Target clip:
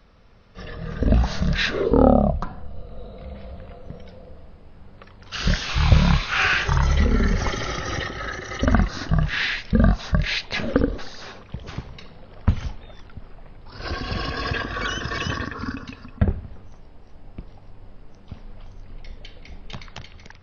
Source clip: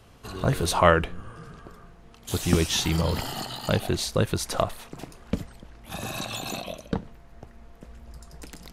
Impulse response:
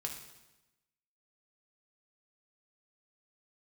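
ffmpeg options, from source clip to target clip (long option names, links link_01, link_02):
-af "equalizer=frequency=730:width_type=o:width=0.23:gain=-11.5,dynaudnorm=framelen=120:gausssize=5:maxgain=7dB,asetrate=18846,aresample=44100"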